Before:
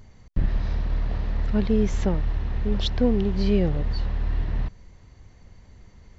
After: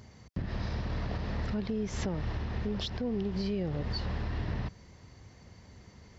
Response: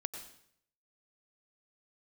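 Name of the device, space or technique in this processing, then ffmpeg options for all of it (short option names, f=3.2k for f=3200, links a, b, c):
broadcast voice chain: -af "highpass=87,deesser=0.7,acompressor=threshold=-27dB:ratio=4,equalizer=f=5.1k:t=o:w=0.31:g=6,alimiter=level_in=1.5dB:limit=-24dB:level=0:latency=1:release=139,volume=-1.5dB,volume=1dB"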